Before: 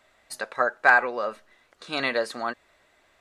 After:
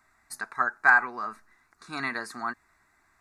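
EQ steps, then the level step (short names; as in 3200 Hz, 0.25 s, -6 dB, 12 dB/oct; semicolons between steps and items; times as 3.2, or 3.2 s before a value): fixed phaser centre 1300 Hz, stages 4; 0.0 dB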